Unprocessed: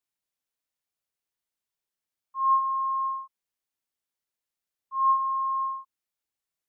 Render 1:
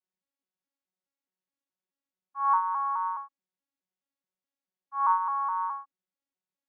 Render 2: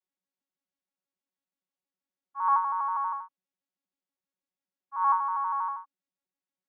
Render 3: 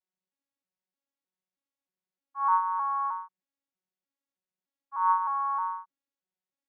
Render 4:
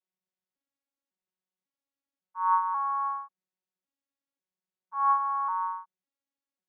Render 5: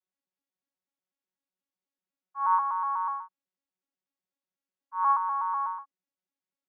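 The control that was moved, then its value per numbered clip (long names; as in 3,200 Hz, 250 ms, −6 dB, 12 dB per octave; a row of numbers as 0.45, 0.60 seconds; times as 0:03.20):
vocoder with an arpeggio as carrier, a note every: 211, 80, 310, 548, 123 milliseconds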